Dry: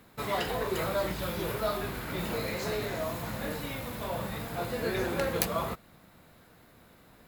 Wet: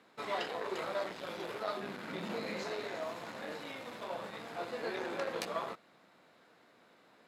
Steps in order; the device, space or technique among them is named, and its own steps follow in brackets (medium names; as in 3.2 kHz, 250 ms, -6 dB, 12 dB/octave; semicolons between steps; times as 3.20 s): public-address speaker with an overloaded transformer (transformer saturation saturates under 2.1 kHz; band-pass 300–6000 Hz); 1.77–2.63 s: peaking EQ 200 Hz +10.5 dB 0.8 oct; trim -3.5 dB